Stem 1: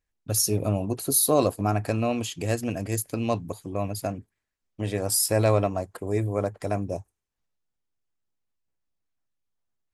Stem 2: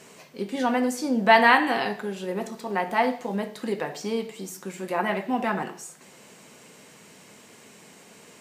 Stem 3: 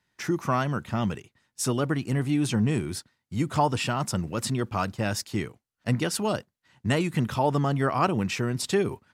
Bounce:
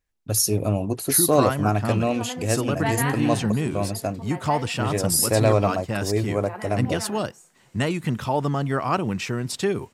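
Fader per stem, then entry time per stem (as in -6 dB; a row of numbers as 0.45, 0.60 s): +2.5, -11.0, +0.5 dB; 0.00, 1.55, 0.90 s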